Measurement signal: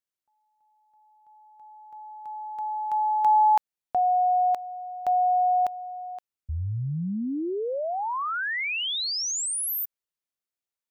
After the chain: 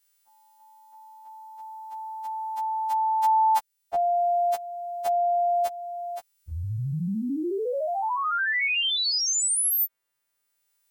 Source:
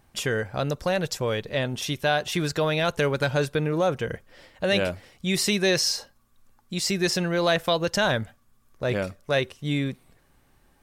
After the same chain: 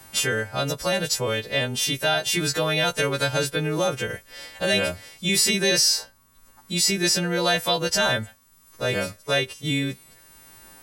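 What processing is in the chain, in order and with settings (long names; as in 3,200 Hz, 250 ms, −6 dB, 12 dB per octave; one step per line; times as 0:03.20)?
every partial snapped to a pitch grid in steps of 2 semitones
multiband upward and downward compressor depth 40%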